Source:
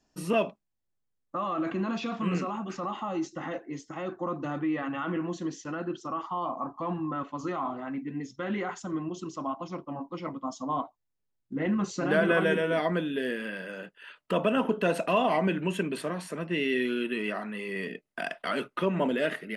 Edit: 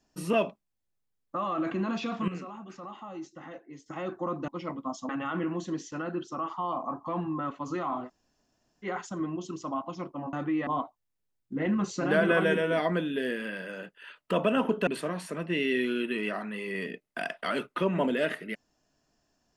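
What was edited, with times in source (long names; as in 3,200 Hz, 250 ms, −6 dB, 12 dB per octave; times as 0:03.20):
0:02.28–0:03.86: clip gain −9 dB
0:04.48–0:04.82: swap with 0:10.06–0:10.67
0:07.80–0:08.58: fill with room tone, crossfade 0.06 s
0:14.87–0:15.88: remove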